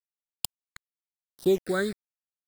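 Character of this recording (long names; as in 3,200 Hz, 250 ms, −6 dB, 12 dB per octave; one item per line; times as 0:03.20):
tremolo triangle 3.5 Hz, depth 45%
a quantiser's noise floor 6 bits, dither none
phaser sweep stages 8, 0.97 Hz, lowest notch 780–2,700 Hz
AAC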